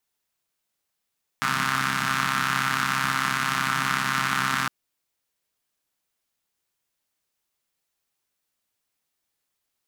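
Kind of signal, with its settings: four-cylinder engine model, steady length 3.26 s, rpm 4000, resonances 190/1300 Hz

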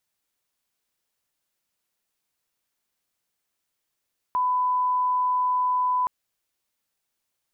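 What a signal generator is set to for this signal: line-up tone -20 dBFS 1.72 s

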